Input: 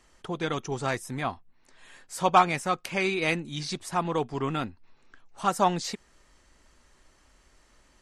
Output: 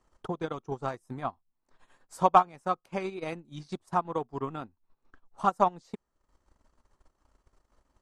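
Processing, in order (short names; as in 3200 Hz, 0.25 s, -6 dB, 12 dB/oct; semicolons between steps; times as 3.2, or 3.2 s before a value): resonant high shelf 1500 Hz -7.5 dB, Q 1.5; transient shaper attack +10 dB, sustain -11 dB; gain -8.5 dB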